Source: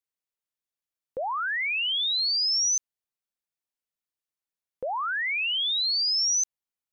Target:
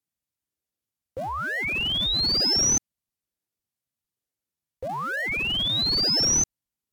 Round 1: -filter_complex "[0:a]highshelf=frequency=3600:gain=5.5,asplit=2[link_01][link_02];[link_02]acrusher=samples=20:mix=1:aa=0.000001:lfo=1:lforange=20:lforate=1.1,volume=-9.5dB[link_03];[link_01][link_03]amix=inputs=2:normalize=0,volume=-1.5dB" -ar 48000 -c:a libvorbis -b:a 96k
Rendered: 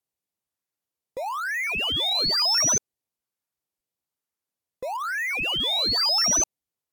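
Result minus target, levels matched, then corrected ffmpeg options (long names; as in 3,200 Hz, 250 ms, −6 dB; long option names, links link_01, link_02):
sample-and-hold swept by an LFO: distortion −18 dB
-filter_complex "[0:a]highshelf=frequency=3600:gain=5.5,asplit=2[link_01][link_02];[link_02]acrusher=samples=71:mix=1:aa=0.000001:lfo=1:lforange=71:lforate=1.1,volume=-9.5dB[link_03];[link_01][link_03]amix=inputs=2:normalize=0,volume=-1.5dB" -ar 48000 -c:a libvorbis -b:a 96k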